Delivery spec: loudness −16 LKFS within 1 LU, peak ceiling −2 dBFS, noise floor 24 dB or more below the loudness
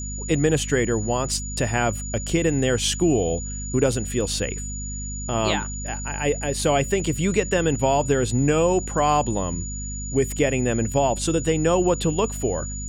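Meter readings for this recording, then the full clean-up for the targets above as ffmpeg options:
mains hum 50 Hz; hum harmonics up to 250 Hz; level of the hum −30 dBFS; interfering tone 6,900 Hz; level of the tone −33 dBFS; integrated loudness −23.0 LKFS; sample peak −5.5 dBFS; target loudness −16.0 LKFS
→ -af "bandreject=frequency=50:width_type=h:width=6,bandreject=frequency=100:width_type=h:width=6,bandreject=frequency=150:width_type=h:width=6,bandreject=frequency=200:width_type=h:width=6,bandreject=frequency=250:width_type=h:width=6"
-af "bandreject=frequency=6900:width=30"
-af "volume=7dB,alimiter=limit=-2dB:level=0:latency=1"

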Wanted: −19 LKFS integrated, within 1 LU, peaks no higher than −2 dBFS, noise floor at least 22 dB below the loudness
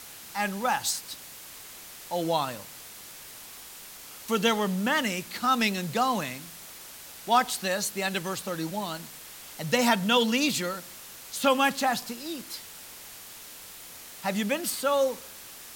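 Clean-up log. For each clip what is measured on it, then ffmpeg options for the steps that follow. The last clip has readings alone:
background noise floor −45 dBFS; target noise floor −50 dBFS; integrated loudness −27.5 LKFS; sample peak −8.0 dBFS; target loudness −19.0 LKFS
→ -af "afftdn=noise_reduction=6:noise_floor=-45"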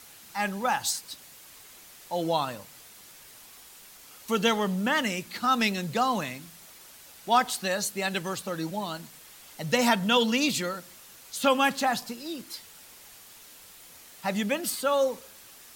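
background noise floor −51 dBFS; integrated loudness −27.5 LKFS; sample peak −8.5 dBFS; target loudness −19.0 LKFS
→ -af "volume=8.5dB,alimiter=limit=-2dB:level=0:latency=1"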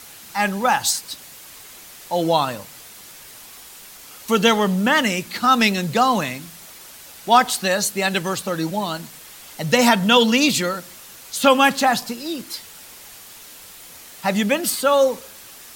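integrated loudness −19.0 LKFS; sample peak −2.0 dBFS; background noise floor −42 dBFS

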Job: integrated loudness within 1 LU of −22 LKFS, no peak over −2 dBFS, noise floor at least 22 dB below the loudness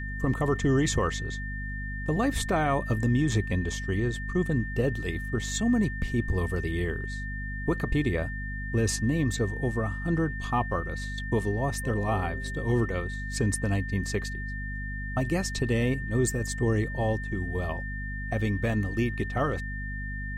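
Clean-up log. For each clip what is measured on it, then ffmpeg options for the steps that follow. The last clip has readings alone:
mains hum 50 Hz; hum harmonics up to 250 Hz; level of the hum −32 dBFS; interfering tone 1,800 Hz; level of the tone −37 dBFS; integrated loudness −29.0 LKFS; sample peak −14.5 dBFS; target loudness −22.0 LKFS
→ -af "bandreject=frequency=50:width_type=h:width=4,bandreject=frequency=100:width_type=h:width=4,bandreject=frequency=150:width_type=h:width=4,bandreject=frequency=200:width_type=h:width=4,bandreject=frequency=250:width_type=h:width=4"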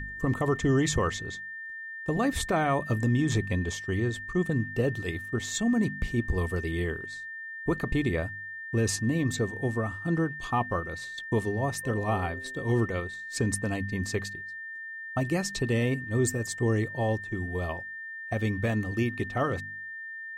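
mains hum none found; interfering tone 1,800 Hz; level of the tone −37 dBFS
→ -af "bandreject=frequency=1800:width=30"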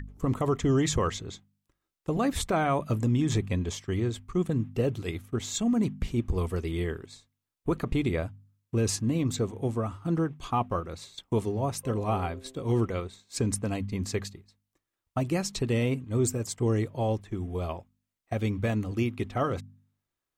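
interfering tone none found; integrated loudness −29.5 LKFS; sample peak −15.0 dBFS; target loudness −22.0 LKFS
→ -af "volume=7.5dB"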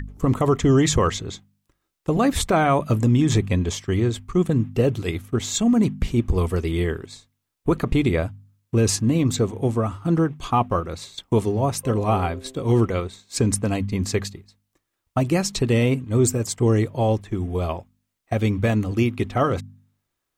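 integrated loudness −22.0 LKFS; sample peak −7.5 dBFS; background noise floor −79 dBFS

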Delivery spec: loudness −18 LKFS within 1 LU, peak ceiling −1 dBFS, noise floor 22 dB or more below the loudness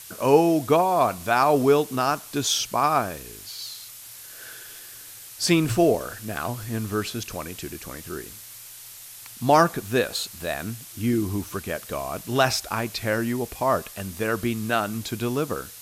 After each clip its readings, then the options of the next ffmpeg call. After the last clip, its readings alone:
background noise floor −43 dBFS; target noise floor −46 dBFS; integrated loudness −24.0 LKFS; sample peak −4.5 dBFS; target loudness −18.0 LKFS
→ -af "afftdn=noise_reduction=6:noise_floor=-43"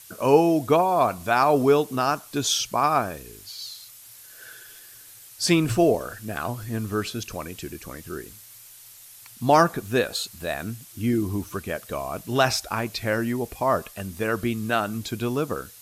background noise floor −47 dBFS; integrated loudness −24.0 LKFS; sample peak −4.5 dBFS; target loudness −18.0 LKFS
→ -af "volume=6dB,alimiter=limit=-1dB:level=0:latency=1"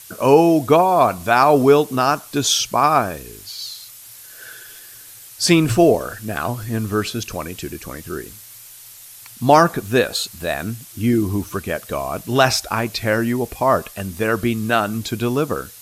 integrated loudness −18.0 LKFS; sample peak −1.0 dBFS; background noise floor −41 dBFS

